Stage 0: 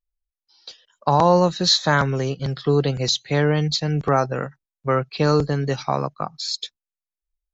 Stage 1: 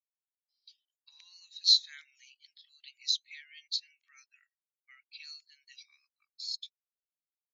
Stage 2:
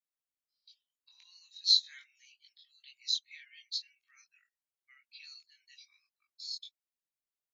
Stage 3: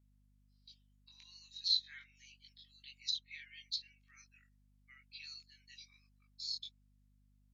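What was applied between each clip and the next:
Chebyshev high-pass 2.2 kHz, order 4; spectral contrast expander 1.5:1; trim -5 dB
chorus voices 6, 0.43 Hz, delay 21 ms, depth 4.3 ms
hum 50 Hz, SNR 31 dB; low-pass that closes with the level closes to 2.7 kHz, closed at -32 dBFS; trim +1 dB

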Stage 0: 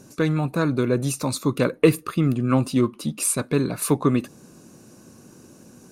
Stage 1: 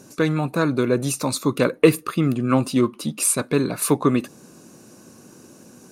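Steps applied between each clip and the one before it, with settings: bass shelf 120 Hz -10 dB; trim +3 dB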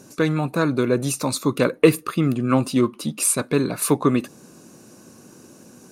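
no audible change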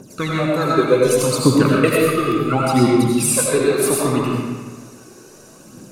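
phaser 0.69 Hz, delay 2.8 ms, feedback 73%; reverberation RT60 1.5 s, pre-delay 50 ms, DRR -4 dB; trim -2.5 dB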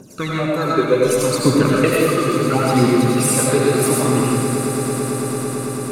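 echo with a slow build-up 111 ms, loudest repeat 8, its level -15.5 dB; trim -1 dB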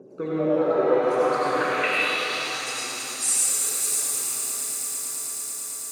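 band-pass sweep 430 Hz -> 7.1 kHz, 0.48–2.74 s; pitch-shifted reverb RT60 4 s, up +7 st, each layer -8 dB, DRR -2.5 dB

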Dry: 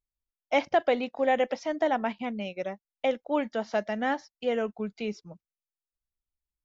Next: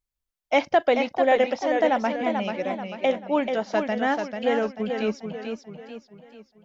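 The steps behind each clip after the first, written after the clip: modulated delay 439 ms, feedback 43%, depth 94 cents, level -6 dB; trim +4 dB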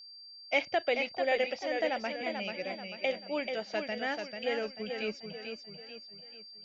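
fifteen-band graphic EQ 250 Hz -7 dB, 1 kHz -9 dB, 2.5 kHz +8 dB; whistle 4.7 kHz -40 dBFS; trim -8 dB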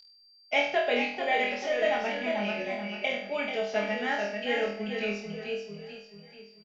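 comb 4.8 ms, depth 77%; on a send: flutter echo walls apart 4.2 m, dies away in 0.53 s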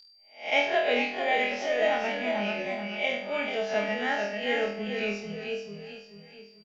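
reverse spectral sustain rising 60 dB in 0.37 s

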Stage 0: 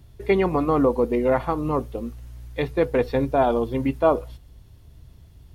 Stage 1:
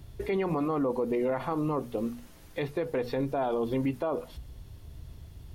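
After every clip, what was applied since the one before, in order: hum notches 60/120/180/240 Hz; compression 1.5:1, threshold -29 dBFS, peak gain reduction 6 dB; peak limiter -23.5 dBFS, peak gain reduction 11.5 dB; trim +2.5 dB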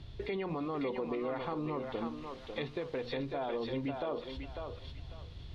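compression 2:1, threshold -38 dBFS, peak gain reduction 7.5 dB; resonant low-pass 3.8 kHz, resonance Q 2.4; on a send: thinning echo 547 ms, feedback 31%, high-pass 540 Hz, level -3 dB; on the sum: trim -1 dB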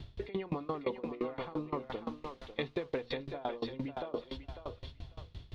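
sawtooth tremolo in dB decaying 5.8 Hz, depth 23 dB; trim +5.5 dB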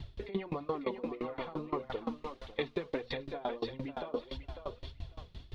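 flange 1.6 Hz, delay 0.9 ms, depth 4.5 ms, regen +31%; trim +4.5 dB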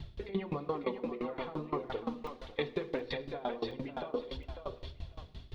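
on a send at -12 dB: reverberation RT60 0.85 s, pre-delay 3 ms; on the sum: crackling interface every 0.72 s, samples 128, zero, from 0.83 s

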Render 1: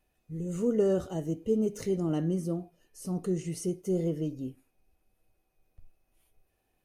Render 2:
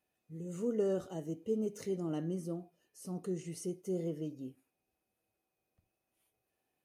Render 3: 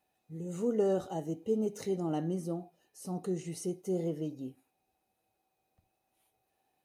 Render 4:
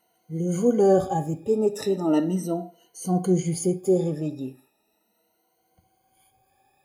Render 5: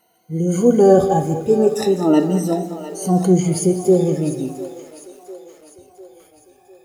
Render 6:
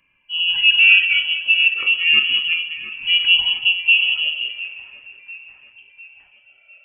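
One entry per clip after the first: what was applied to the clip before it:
Bessel high-pass 160 Hz, order 2; trim -6 dB
small resonant body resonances 800/3900 Hz, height 10 dB, ringing for 20 ms; trim +3 dB
drifting ripple filter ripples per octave 1.9, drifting +0.37 Hz, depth 22 dB; reverberation RT60 0.35 s, pre-delay 32 ms, DRR 16.5 dB; trim +6.5 dB
two-band feedback delay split 400 Hz, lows 109 ms, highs 701 ms, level -12.5 dB; bit-crushed delay 201 ms, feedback 35%, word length 8-bit, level -13 dB; trim +7 dB
frequency inversion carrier 3.1 kHz; trim -1 dB

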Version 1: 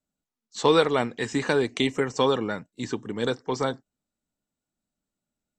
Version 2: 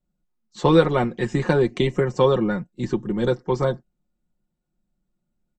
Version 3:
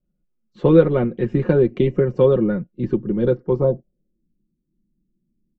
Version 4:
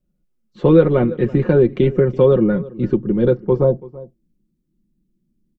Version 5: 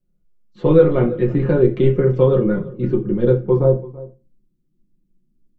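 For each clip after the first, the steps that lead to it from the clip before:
tilt EQ -3 dB/octave; comb 5.6 ms, depth 73%
high-order bell 1.2 kHz -15 dB; low-pass sweep 1.5 kHz -> 290 Hz, 3.41–4.28 s; trim +3 dB
echo from a far wall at 57 m, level -20 dB; in parallel at +2 dB: peak limiter -9 dBFS, peak gain reduction 7 dB; on the sum: trim -3.5 dB
reverberation RT60 0.30 s, pre-delay 6 ms, DRR 1.5 dB; trim -4 dB

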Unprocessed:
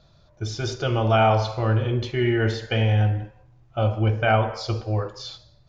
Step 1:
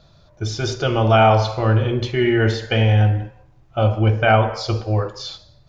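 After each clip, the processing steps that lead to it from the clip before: hum notches 60/120 Hz; trim +5 dB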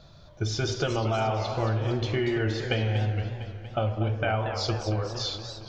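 compression 10:1, threshold -24 dBFS, peak gain reduction 15 dB; modulated delay 231 ms, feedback 62%, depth 210 cents, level -10 dB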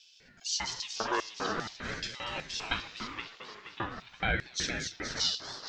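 LFO high-pass square 2.5 Hz 930–4400 Hz; thinning echo 474 ms, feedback 48%, high-pass 500 Hz, level -9.5 dB; ring modulator with a swept carrier 630 Hz, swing 50%, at 0.43 Hz

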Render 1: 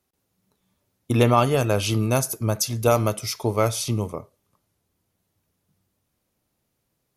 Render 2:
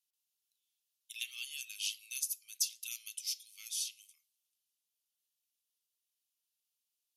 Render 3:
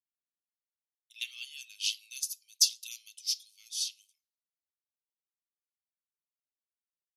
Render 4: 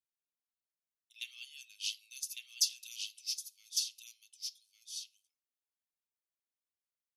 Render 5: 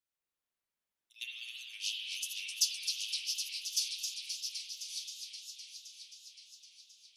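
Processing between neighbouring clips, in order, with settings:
elliptic high-pass 2.8 kHz, stop band 70 dB; trim -7.5 dB
peaking EQ 4.4 kHz +12 dB 1.5 oct; three bands expanded up and down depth 100%; trim -6 dB
delay 1154 ms -4 dB; trim -6 dB
reverberation RT60 2.0 s, pre-delay 40 ms, DRR -3 dB; modulated delay 260 ms, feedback 80%, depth 196 cents, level -6.5 dB

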